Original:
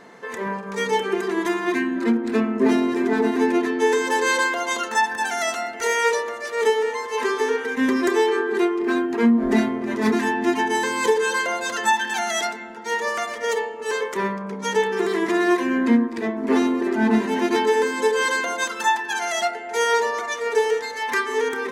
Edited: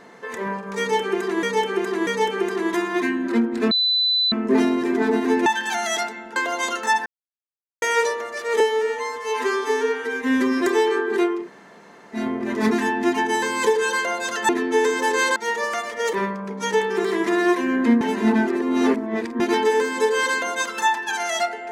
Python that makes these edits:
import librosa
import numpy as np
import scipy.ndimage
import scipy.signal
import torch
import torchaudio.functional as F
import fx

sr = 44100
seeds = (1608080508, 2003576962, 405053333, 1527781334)

y = fx.edit(x, sr, fx.repeat(start_s=0.79, length_s=0.64, count=3),
    fx.insert_tone(at_s=2.43, length_s=0.61, hz=4000.0, db=-16.5),
    fx.swap(start_s=3.57, length_s=0.87, other_s=11.9, other_length_s=0.9),
    fx.silence(start_s=5.14, length_s=0.76),
    fx.stretch_span(start_s=6.68, length_s=1.34, factor=1.5),
    fx.room_tone_fill(start_s=8.82, length_s=0.79, crossfade_s=0.16),
    fx.cut(start_s=13.57, length_s=0.58),
    fx.reverse_span(start_s=16.03, length_s=1.39), tone=tone)